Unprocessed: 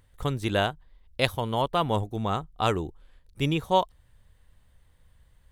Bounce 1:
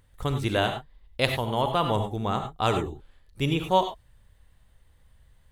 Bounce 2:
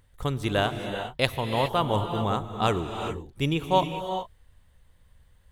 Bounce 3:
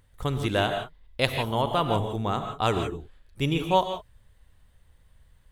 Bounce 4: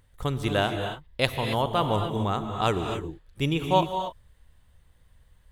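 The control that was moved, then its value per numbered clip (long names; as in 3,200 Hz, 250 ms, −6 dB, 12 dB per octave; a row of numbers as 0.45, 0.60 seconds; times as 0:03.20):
reverb whose tail is shaped and stops, gate: 120, 440, 190, 300 milliseconds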